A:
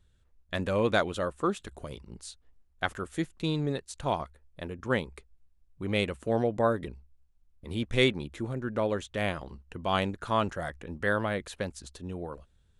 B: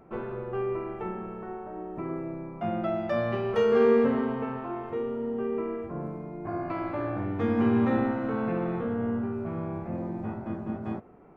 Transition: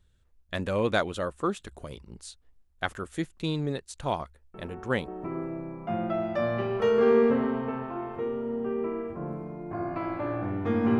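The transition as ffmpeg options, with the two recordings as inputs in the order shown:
-filter_complex "[1:a]asplit=2[a][b];[0:a]apad=whole_dur=10.99,atrim=end=10.99,atrim=end=5.082[c];[b]atrim=start=1.818:end=7.73[d];[a]atrim=start=1.28:end=1.82,asetpts=PTS-STARTPTS,volume=-6.5dB,afade=t=in:d=0.004:c=hsin,afade=t=out:st=0.536:d=0.004:c=hsin,adelay=4540[e];[c][d]acrossfade=d=0.004:c1=hsin:c2=hsin[f];[f][e]amix=inputs=2:normalize=0"

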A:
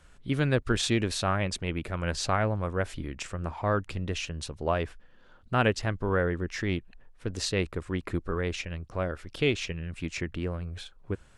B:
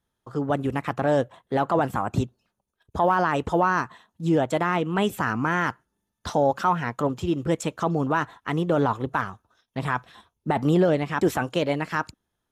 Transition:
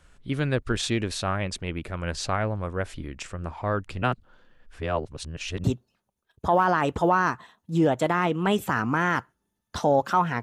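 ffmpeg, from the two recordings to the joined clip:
-filter_complex "[0:a]apad=whole_dur=10.42,atrim=end=10.42,asplit=2[a][b];[a]atrim=end=4.022[c];[b]atrim=start=4.018:end=5.642,asetpts=PTS-STARTPTS,areverse[d];[1:a]atrim=start=2.148:end=6.93[e];[c][d]acrossfade=d=0.004:c1=hsin:c2=hsin[f];[f][e]acrossfade=d=0.004:c1=hsin:c2=hsin"

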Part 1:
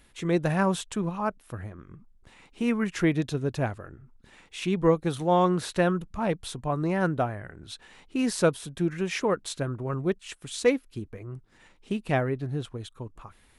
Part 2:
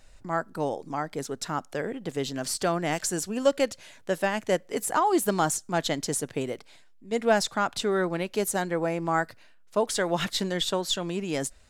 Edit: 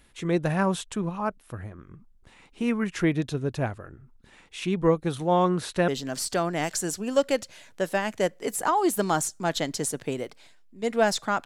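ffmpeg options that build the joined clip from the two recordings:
-filter_complex "[0:a]apad=whole_dur=11.45,atrim=end=11.45,atrim=end=5.882[a];[1:a]atrim=start=2.168:end=7.74[b];[a][b]acrossfade=d=0.004:c1=hsin:c2=hsin"

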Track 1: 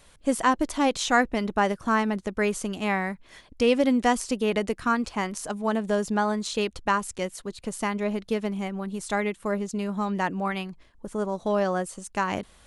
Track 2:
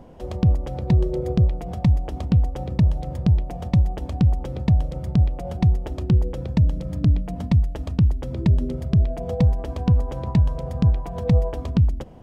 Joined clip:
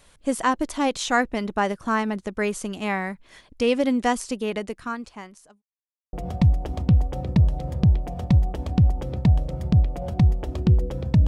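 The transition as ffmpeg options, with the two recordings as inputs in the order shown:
-filter_complex "[0:a]apad=whole_dur=11.27,atrim=end=11.27,asplit=2[a][b];[a]atrim=end=5.62,asetpts=PTS-STARTPTS,afade=t=out:st=4.13:d=1.49[c];[b]atrim=start=5.62:end=6.13,asetpts=PTS-STARTPTS,volume=0[d];[1:a]atrim=start=1.56:end=6.7,asetpts=PTS-STARTPTS,afade=t=in:d=0.004:c=hsin[e];[c][d][e]concat=n=3:v=0:a=1"

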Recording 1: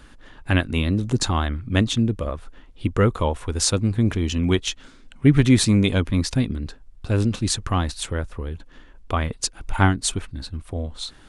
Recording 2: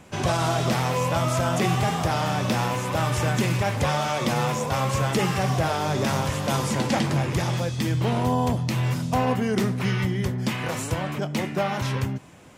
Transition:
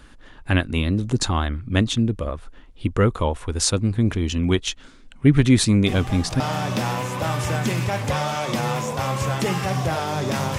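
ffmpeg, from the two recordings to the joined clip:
-filter_complex "[1:a]asplit=2[a][b];[0:a]apad=whole_dur=10.58,atrim=end=10.58,atrim=end=6.402[c];[b]atrim=start=2.128:end=6.31[d];[a]atrim=start=1.59:end=2.13,asetpts=PTS-STARTPTS,volume=-9.5dB,afade=t=in:d=0.004:c=hsin,afade=t=out:st=0.536:d=0.004:c=hsin,adelay=5860[e];[c][d]acrossfade=d=0.004:c1=hsin:c2=hsin[f];[f][e]amix=inputs=2:normalize=0"

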